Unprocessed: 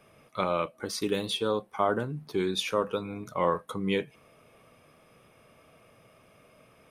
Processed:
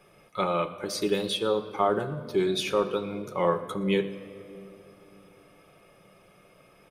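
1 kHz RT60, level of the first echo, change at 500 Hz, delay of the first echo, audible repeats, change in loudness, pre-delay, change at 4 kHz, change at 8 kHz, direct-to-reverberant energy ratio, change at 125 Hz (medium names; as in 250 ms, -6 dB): 2.3 s, -21.0 dB, +3.0 dB, 119 ms, 1, +2.0 dB, 5 ms, +1.0 dB, +1.0 dB, 7.0 dB, +1.5 dB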